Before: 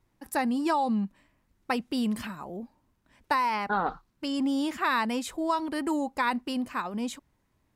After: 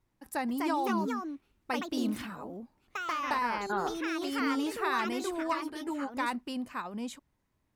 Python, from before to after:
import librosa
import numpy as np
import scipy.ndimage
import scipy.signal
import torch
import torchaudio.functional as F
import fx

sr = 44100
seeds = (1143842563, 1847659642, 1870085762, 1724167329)

y = fx.echo_pitch(x, sr, ms=307, semitones=3, count=2, db_per_echo=-3.0)
y = fx.ensemble(y, sr, at=(5.53, 6.09), fade=0.02)
y = y * librosa.db_to_amplitude(-5.5)